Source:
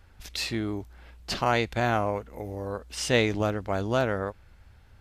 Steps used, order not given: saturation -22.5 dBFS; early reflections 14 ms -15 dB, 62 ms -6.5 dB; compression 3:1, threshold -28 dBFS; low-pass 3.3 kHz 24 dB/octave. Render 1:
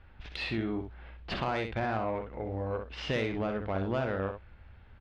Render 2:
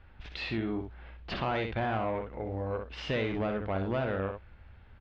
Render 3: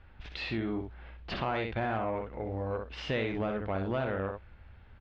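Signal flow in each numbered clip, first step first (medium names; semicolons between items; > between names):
low-pass > compression > saturation > early reflections; saturation > early reflections > compression > low-pass; early reflections > compression > saturation > low-pass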